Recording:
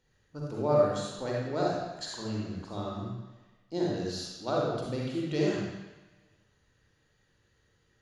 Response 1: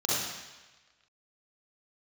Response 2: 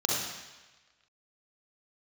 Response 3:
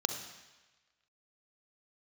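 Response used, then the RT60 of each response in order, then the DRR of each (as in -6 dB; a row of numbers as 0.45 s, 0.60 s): 2; 1.2 s, 1.2 s, 1.2 s; -8.5 dB, -4.5 dB, 5.5 dB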